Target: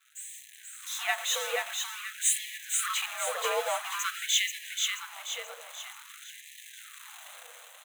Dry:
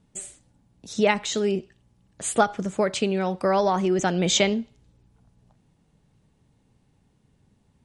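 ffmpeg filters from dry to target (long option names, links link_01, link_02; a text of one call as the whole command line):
ffmpeg -i in.wav -af "aeval=exprs='val(0)+0.5*0.0841*sgn(val(0))':channel_layout=same,agate=range=-33dB:threshold=-16dB:ratio=3:detection=peak,asubboost=boost=6:cutoff=140,acompressor=threshold=-31dB:ratio=6,afreqshift=-130,superequalizer=8b=0.562:9b=0.631:14b=0.251,dynaudnorm=framelen=110:gausssize=9:maxgain=15dB,aecho=1:1:482|964|1446|1928|2410|2892:0.631|0.29|0.134|0.0614|0.0283|0.013,afftfilt=real='re*gte(b*sr/1024,450*pow(1700/450,0.5+0.5*sin(2*PI*0.49*pts/sr)))':imag='im*gte(b*sr/1024,450*pow(1700/450,0.5+0.5*sin(2*PI*0.49*pts/sr)))':win_size=1024:overlap=0.75,volume=-5.5dB" out.wav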